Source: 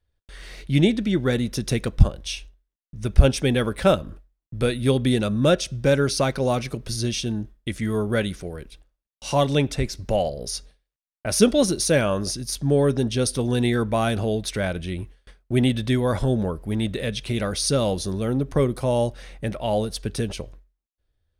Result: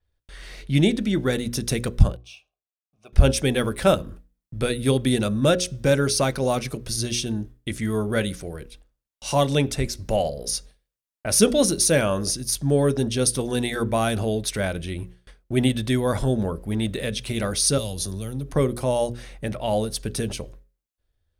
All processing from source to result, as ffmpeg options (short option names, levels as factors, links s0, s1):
-filter_complex "[0:a]asettb=1/sr,asplit=3[s0][s1][s2];[s0]atrim=end=2.164[s3];[s1]atrim=start=2.16:end=3.13,asetpts=PTS-STARTPTS,afade=t=in:d=0.004:c=qsin,afade=t=out:st=0.966:d=0.004:c=qsin,asplit=3[s4][s5][s6];[s4]bandpass=f=730:t=q:w=8,volume=1[s7];[s5]bandpass=f=1090:t=q:w=8,volume=0.501[s8];[s6]bandpass=f=2440:t=q:w=8,volume=0.355[s9];[s7][s8][s9]amix=inputs=3:normalize=0,bass=f=250:g=-1,treble=f=4000:g=10,acrusher=bits=8:mode=log:mix=0:aa=0.000001[s10];[s2]atrim=start=3.126[s11];[s3][s10]acrossfade=d=0.004:c1=hsin:c2=qsin[s12];[s12][s11]acrossfade=d=0.004:c1=qsin:c2=hsin,asettb=1/sr,asplit=3[s13][s14][s15];[s13]atrim=end=17.784[s16];[s14]atrim=start=17.78:end=18.53,asetpts=PTS-STARTPTS,afade=t=in:d=0.004:c=qsin,afade=t=out:st=0.746:d=0.004:c=qsin,equalizer=f=11000:w=7.3:g=7.5,acrossover=split=140|3000[s17][s18][s19];[s18]acompressor=threshold=0.0224:ratio=6:attack=3.2:release=140:knee=2.83:detection=peak[s20];[s17][s20][s19]amix=inputs=3:normalize=0[s21];[s15]atrim=start=18.526[s22];[s16][s21]acrossfade=d=0.004:c1=hsin:c2=qsin[s23];[s23][s22]acrossfade=d=0.004:c1=qsin:c2=hsin,bandreject=f=60:t=h:w=6,bandreject=f=120:t=h:w=6,bandreject=f=180:t=h:w=6,bandreject=f=240:t=h:w=6,bandreject=f=300:t=h:w=6,bandreject=f=360:t=h:w=6,bandreject=f=420:t=h:w=6,bandreject=f=480:t=h:w=6,bandreject=f=540:t=h:w=6,adynamicequalizer=threshold=0.00708:dfrequency=6400:dqfactor=0.7:tfrequency=6400:tqfactor=0.7:attack=5:release=100:ratio=0.375:range=3.5:mode=boostabove:tftype=highshelf"